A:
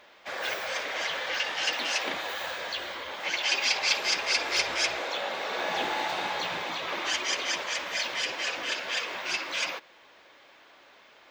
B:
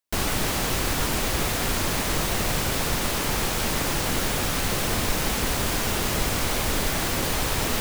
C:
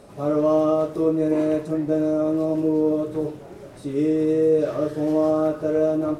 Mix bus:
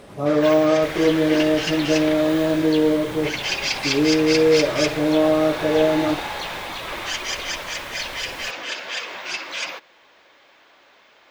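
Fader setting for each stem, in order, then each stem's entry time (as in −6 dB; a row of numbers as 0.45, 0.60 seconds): +2.0, −16.5, +2.5 decibels; 0.00, 0.70, 0.00 seconds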